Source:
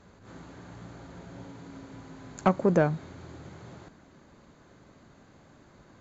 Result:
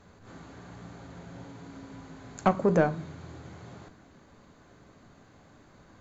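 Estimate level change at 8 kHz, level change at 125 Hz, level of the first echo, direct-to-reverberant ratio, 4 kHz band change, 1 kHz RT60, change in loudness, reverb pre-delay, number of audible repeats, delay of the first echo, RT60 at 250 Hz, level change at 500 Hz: no reading, -1.5 dB, no echo, 11.0 dB, +0.5 dB, 0.35 s, -1.0 dB, 3 ms, no echo, no echo, 0.65 s, 0.0 dB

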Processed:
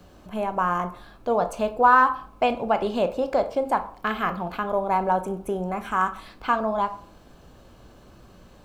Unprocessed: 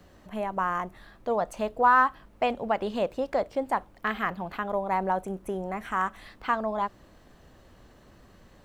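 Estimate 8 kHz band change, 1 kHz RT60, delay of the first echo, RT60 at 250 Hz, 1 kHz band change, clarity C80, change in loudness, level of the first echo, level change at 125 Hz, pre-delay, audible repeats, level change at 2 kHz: no reading, 0.45 s, no echo, 0.45 s, +4.5 dB, 18.0 dB, +4.0 dB, no echo, +5.0 dB, 16 ms, no echo, +2.5 dB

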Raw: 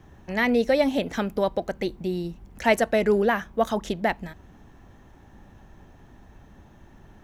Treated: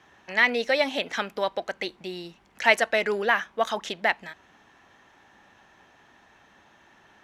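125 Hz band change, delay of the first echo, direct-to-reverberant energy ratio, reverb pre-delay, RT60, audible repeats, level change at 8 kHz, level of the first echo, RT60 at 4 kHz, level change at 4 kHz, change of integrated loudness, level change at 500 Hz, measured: -13.0 dB, no echo, no reverb, no reverb, no reverb, no echo, 0.0 dB, no echo, no reverb, +5.5 dB, -0.5 dB, -4.0 dB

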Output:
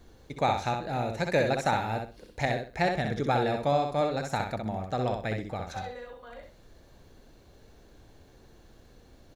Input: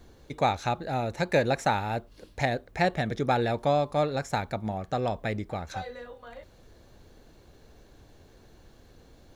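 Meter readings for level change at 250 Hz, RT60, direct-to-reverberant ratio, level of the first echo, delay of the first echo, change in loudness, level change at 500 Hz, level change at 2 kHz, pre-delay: -1.0 dB, no reverb, no reverb, -5.0 dB, 64 ms, -1.0 dB, -1.0 dB, -0.5 dB, no reverb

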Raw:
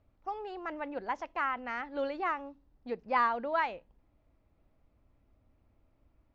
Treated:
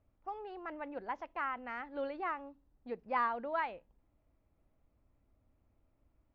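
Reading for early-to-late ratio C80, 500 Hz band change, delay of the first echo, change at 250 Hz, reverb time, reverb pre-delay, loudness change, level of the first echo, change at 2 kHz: no reverb, -4.5 dB, no echo, -4.5 dB, no reverb, no reverb, -5.0 dB, no echo, -5.5 dB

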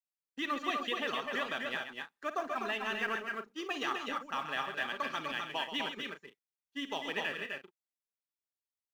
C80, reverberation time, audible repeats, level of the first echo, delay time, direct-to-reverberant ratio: no reverb, no reverb, 4, -12.5 dB, 53 ms, no reverb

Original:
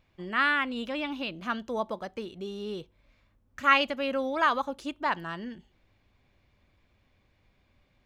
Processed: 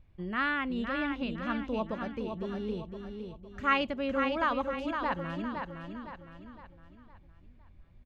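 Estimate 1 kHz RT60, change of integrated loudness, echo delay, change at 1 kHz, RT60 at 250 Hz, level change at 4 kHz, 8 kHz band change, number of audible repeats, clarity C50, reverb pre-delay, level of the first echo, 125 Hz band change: no reverb, -4.0 dB, 511 ms, -4.0 dB, no reverb, -6.5 dB, no reading, 4, no reverb, no reverb, -6.0 dB, +5.0 dB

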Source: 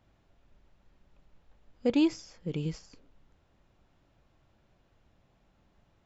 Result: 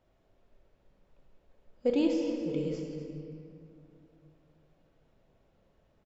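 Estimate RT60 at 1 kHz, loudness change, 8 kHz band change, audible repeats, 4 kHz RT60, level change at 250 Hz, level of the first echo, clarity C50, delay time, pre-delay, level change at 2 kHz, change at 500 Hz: 2.1 s, -1.0 dB, no reading, 1, 1.6 s, -1.0 dB, -12.0 dB, 2.5 dB, 247 ms, 3 ms, -3.5 dB, +3.5 dB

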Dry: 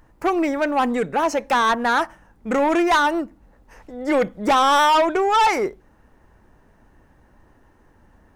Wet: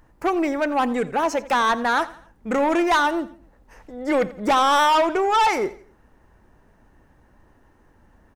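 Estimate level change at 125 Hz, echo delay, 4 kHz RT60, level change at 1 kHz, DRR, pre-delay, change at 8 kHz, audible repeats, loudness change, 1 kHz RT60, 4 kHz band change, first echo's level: no reading, 86 ms, no reverb, -1.5 dB, no reverb, no reverb, -1.5 dB, 3, -1.5 dB, no reverb, -1.5 dB, -18.5 dB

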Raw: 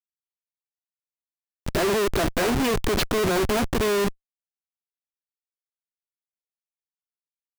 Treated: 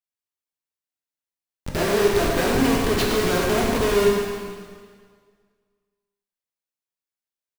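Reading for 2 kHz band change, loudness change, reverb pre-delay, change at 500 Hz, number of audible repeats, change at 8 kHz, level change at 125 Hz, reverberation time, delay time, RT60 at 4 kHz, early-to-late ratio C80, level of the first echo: +2.5 dB, +2.5 dB, 6 ms, +3.5 dB, 1, +2.0 dB, +2.0 dB, 1.8 s, 112 ms, 1.7 s, 1.0 dB, -7.0 dB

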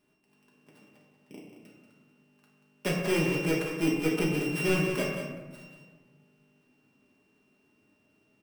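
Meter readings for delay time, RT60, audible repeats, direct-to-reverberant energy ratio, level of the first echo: 185 ms, 1.3 s, 1, -4.5 dB, -8.5 dB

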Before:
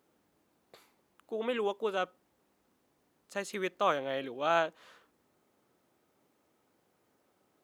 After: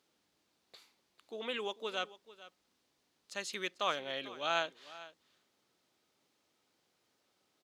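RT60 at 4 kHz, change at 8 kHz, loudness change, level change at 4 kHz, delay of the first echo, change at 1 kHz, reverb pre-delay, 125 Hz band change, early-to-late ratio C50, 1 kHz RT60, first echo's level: no reverb, +1.5 dB, -4.0 dB, +4.0 dB, 444 ms, -5.5 dB, no reverb, -8.5 dB, no reverb, no reverb, -17.5 dB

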